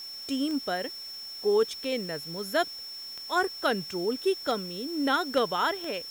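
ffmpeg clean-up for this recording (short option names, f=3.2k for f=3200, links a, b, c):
-af "adeclick=t=4,bandreject=f=5.4k:w=30,afwtdn=0.0025"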